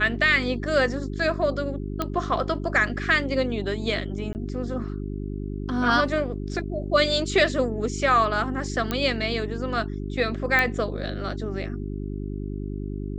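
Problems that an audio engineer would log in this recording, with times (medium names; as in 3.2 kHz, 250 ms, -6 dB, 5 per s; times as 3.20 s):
hum 50 Hz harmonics 8 -31 dBFS
2.02 s: pop -12 dBFS
4.33–4.35 s: dropout 19 ms
8.91 s: pop -11 dBFS
10.59 s: pop -9 dBFS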